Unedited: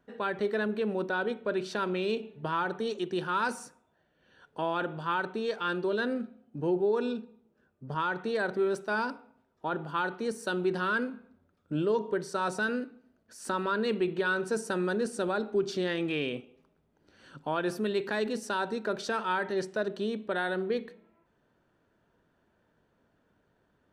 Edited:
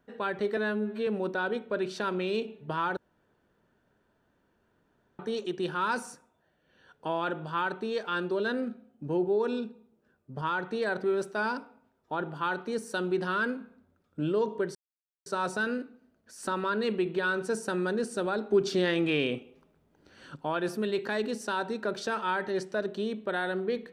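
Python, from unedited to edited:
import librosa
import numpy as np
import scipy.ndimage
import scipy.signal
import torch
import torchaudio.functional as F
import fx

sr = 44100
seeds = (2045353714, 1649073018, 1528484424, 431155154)

y = fx.edit(x, sr, fx.stretch_span(start_s=0.57, length_s=0.25, factor=2.0),
    fx.insert_room_tone(at_s=2.72, length_s=2.22),
    fx.insert_silence(at_s=12.28, length_s=0.51),
    fx.clip_gain(start_s=15.53, length_s=1.85, db=4.0), tone=tone)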